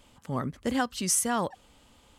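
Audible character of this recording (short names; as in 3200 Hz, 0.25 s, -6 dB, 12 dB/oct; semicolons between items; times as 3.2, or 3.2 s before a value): noise floor -60 dBFS; spectral tilt -4.0 dB/oct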